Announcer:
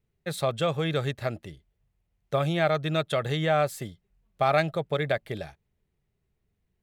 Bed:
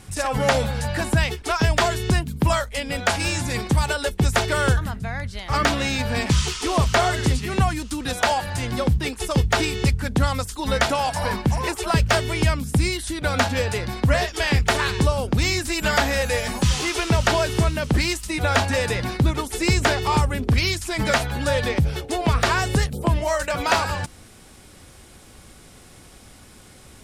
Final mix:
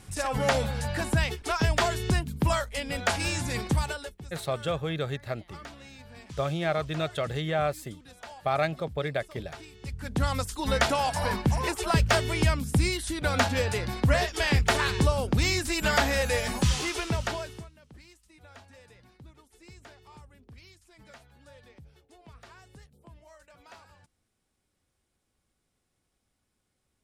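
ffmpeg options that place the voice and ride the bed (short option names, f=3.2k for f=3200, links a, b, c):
-filter_complex "[0:a]adelay=4050,volume=-3.5dB[a];[1:a]volume=15dB,afade=t=out:st=3.71:d=0.46:silence=0.112202,afade=t=in:st=9.82:d=0.57:silence=0.0944061,afade=t=out:st=16.6:d=1.09:silence=0.0421697[b];[a][b]amix=inputs=2:normalize=0"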